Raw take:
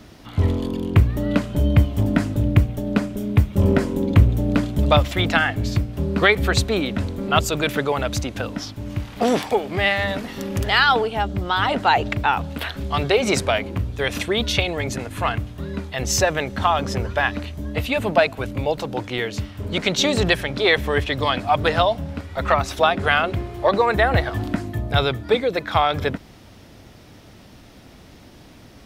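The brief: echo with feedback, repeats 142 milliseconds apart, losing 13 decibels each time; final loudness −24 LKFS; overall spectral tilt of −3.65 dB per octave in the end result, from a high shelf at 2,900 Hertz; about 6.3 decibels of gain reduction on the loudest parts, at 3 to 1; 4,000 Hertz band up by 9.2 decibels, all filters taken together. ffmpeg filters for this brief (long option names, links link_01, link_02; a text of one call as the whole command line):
ffmpeg -i in.wav -af "highshelf=frequency=2900:gain=8.5,equalizer=frequency=4000:width_type=o:gain=5,acompressor=threshold=-16dB:ratio=3,aecho=1:1:142|284|426:0.224|0.0493|0.0108,volume=-3dB" out.wav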